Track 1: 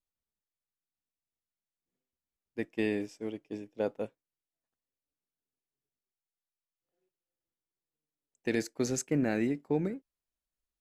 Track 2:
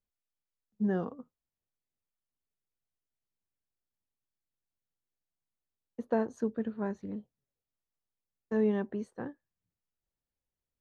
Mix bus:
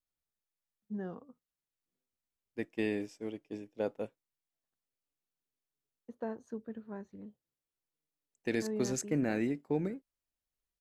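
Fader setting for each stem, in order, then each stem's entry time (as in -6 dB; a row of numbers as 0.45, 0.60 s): -2.5, -9.5 dB; 0.00, 0.10 s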